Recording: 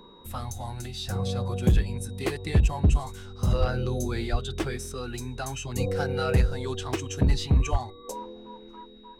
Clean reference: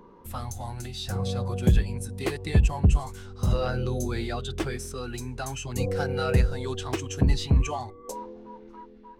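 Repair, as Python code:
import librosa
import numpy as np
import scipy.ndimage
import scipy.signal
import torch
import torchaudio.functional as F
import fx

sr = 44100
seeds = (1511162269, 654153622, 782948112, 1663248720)

y = fx.fix_declip(x, sr, threshold_db=-13.5)
y = fx.notch(y, sr, hz=3800.0, q=30.0)
y = fx.fix_deplosive(y, sr, at_s=(3.59, 4.31, 7.71))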